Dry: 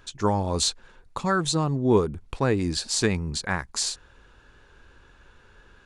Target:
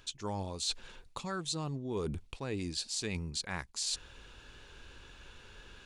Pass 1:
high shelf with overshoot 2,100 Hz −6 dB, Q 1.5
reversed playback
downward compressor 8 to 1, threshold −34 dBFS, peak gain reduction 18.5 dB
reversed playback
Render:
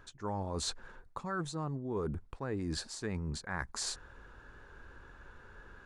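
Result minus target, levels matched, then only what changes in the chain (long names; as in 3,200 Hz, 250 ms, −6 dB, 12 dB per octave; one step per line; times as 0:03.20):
4,000 Hz band −4.0 dB
change: high shelf with overshoot 2,100 Hz +6 dB, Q 1.5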